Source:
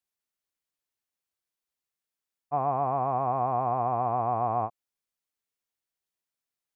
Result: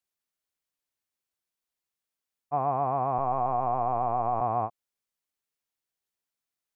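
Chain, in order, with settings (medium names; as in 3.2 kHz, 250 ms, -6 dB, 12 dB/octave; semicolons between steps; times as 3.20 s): 3.18–4.41 s: LPC vocoder at 8 kHz pitch kept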